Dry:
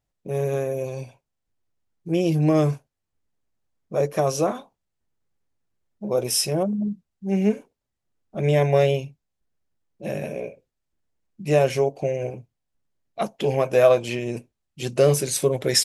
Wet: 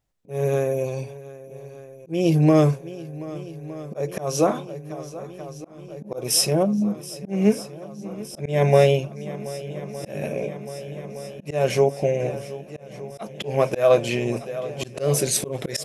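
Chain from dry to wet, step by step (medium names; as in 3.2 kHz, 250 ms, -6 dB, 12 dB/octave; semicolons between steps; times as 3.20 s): shuffle delay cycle 1214 ms, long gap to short 1.5:1, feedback 73%, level -18 dB; slow attack 204 ms; trim +3 dB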